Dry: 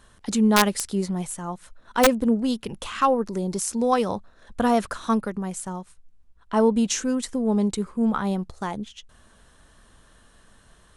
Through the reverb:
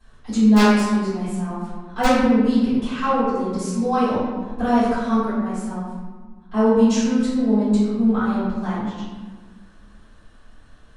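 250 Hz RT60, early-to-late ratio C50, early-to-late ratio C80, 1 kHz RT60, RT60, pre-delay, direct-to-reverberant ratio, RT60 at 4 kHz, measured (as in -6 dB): 2.2 s, -1.5 dB, 1.0 dB, 1.4 s, 1.4 s, 3 ms, -17.0 dB, 0.85 s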